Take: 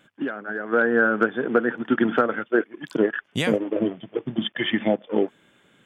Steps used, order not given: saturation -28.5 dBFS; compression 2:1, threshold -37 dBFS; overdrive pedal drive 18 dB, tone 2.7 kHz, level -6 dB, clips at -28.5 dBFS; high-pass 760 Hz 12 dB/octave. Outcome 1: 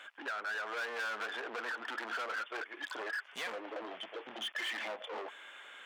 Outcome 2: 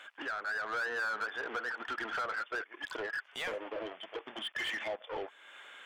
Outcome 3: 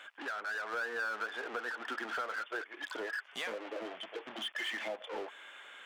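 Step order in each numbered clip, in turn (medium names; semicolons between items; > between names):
saturation > overdrive pedal > high-pass > compression; compression > high-pass > saturation > overdrive pedal; overdrive pedal > high-pass > compression > saturation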